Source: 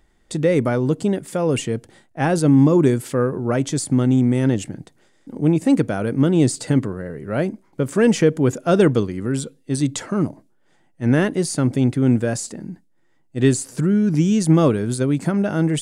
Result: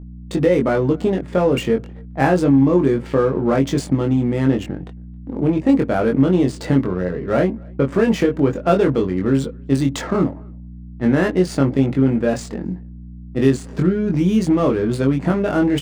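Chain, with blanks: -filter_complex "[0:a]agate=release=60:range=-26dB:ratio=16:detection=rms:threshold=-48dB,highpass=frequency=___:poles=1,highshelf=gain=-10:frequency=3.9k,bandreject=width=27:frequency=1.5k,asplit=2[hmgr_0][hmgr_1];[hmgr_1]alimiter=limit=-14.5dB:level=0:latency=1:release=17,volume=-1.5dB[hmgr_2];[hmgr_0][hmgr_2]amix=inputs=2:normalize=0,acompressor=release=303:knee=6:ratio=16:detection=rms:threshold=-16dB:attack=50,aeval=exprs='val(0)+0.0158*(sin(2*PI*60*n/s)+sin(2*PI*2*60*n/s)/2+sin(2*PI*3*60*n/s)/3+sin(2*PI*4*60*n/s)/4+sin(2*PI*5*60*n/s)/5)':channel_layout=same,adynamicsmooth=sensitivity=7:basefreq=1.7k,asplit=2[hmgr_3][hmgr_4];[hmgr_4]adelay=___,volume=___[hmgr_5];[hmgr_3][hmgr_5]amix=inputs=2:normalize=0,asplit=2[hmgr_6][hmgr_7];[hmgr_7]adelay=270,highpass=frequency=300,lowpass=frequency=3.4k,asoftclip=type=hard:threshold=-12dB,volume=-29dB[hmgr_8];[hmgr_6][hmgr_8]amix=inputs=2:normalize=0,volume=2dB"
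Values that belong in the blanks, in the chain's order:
220, 22, -3dB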